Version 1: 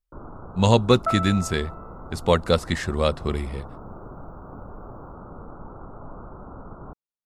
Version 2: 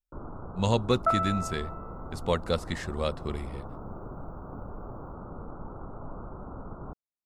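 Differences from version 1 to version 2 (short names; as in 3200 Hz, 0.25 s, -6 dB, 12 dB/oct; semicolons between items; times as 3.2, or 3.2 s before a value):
speech -8.0 dB; first sound: add air absorption 420 m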